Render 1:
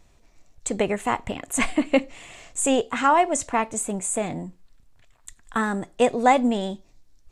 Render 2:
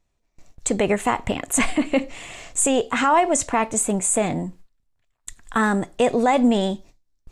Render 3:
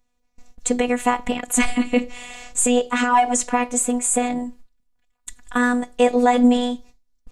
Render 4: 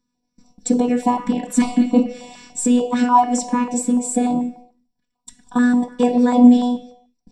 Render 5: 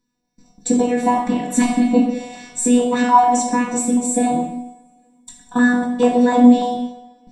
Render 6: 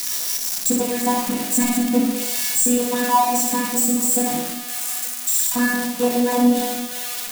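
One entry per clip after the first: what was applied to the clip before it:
gate with hold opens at -43 dBFS; limiter -15.5 dBFS, peak gain reduction 9.5 dB; gain +6 dB
robotiser 245 Hz; gain +3 dB
reverb RT60 0.70 s, pre-delay 3 ms, DRR 2.5 dB; stepped notch 6.8 Hz 700–1900 Hz; gain -9 dB
two-slope reverb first 0.59 s, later 2.4 s, from -26 dB, DRR 0 dB
switching spikes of -9 dBFS; flutter echo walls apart 10.1 m, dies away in 0.48 s; gain -5 dB

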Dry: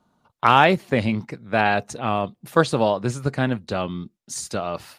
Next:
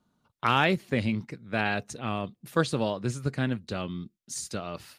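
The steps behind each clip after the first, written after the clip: bell 790 Hz -7.5 dB 1.4 oct; gain -4.5 dB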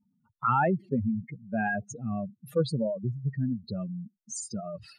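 spectral contrast raised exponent 3.5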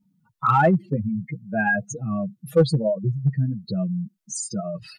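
comb 6.2 ms, depth 83%; in parallel at -7.5 dB: hard clip -18.5 dBFS, distortion -14 dB; on the sum: gain +2 dB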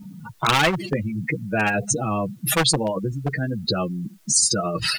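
spectral compressor 4:1; gain +2 dB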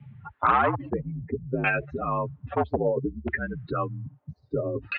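LFO low-pass saw down 0.61 Hz 380–2500 Hz; mistuned SSB -61 Hz 160–3600 Hz; gain -5.5 dB

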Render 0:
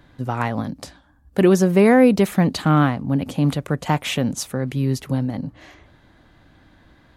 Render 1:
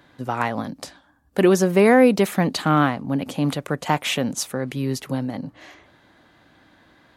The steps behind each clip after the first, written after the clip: HPF 300 Hz 6 dB/oct; gain +1.5 dB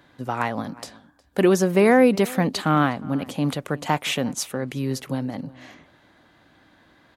outdoor echo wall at 62 m, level -21 dB; gain -1.5 dB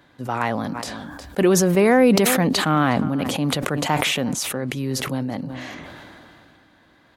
sustainer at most 21 dB/s

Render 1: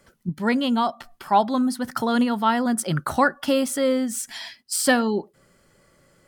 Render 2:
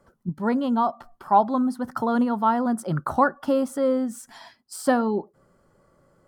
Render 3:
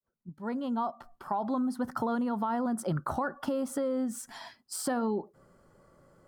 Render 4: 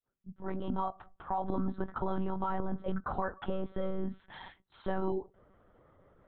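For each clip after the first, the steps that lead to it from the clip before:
resonant high shelf 1600 Hz -10.5 dB, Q 1.5; gain -1.5 dB
opening faded in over 1.78 s; limiter -19 dBFS, peak gain reduction 11 dB; compressor, threshold -27 dBFS, peak gain reduction 5.5 dB
monotone LPC vocoder at 8 kHz 190 Hz; gain -2 dB

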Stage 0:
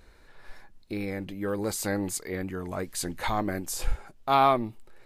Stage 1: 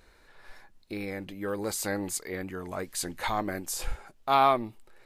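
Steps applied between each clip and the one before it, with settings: low shelf 320 Hz -6 dB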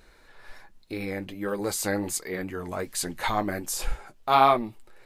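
flange 1.3 Hz, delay 4.4 ms, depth 6.3 ms, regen -47%; gain +7 dB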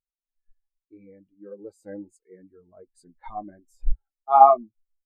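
spectral expander 2.5:1; gain +4.5 dB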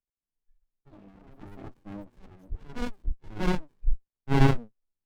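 echoes that change speed 0.173 s, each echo +5 st, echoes 2, each echo -6 dB; running maximum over 65 samples

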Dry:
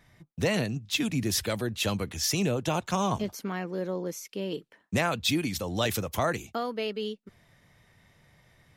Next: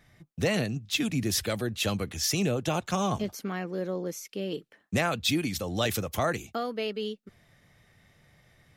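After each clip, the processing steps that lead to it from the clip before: notch 960 Hz, Q 8.9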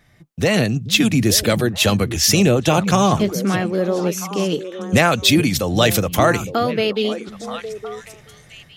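AGC gain up to 8 dB; delay with a stepping band-pass 0.431 s, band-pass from 150 Hz, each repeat 1.4 oct, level -6 dB; gain +4.5 dB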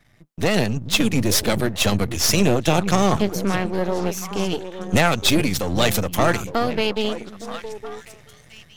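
half-wave gain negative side -12 dB

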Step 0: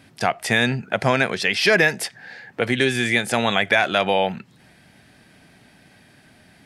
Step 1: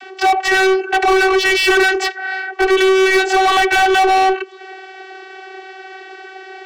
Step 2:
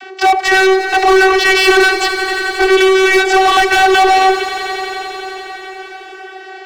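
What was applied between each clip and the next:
steep high-pass 220 Hz; vocoder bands 32, saw 380 Hz; overdrive pedal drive 32 dB, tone 3100 Hz, clips at -5.5 dBFS
swelling echo 89 ms, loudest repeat 5, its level -15 dB; gain +3 dB

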